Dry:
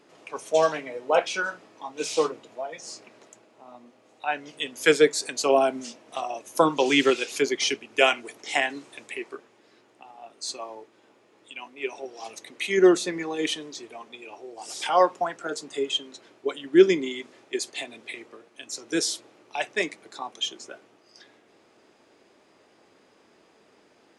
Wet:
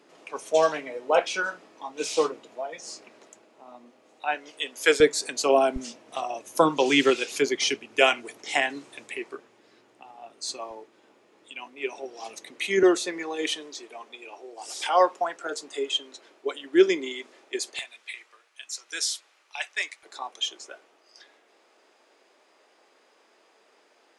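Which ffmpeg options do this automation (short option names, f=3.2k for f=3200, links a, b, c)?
-af "asetnsamples=n=441:p=0,asendcmd='4.35 highpass f 390;5 highpass f 150;5.76 highpass f 42;10.71 highpass f 140;12.83 highpass f 350;17.79 highpass f 1300;20.03 highpass f 480',highpass=180"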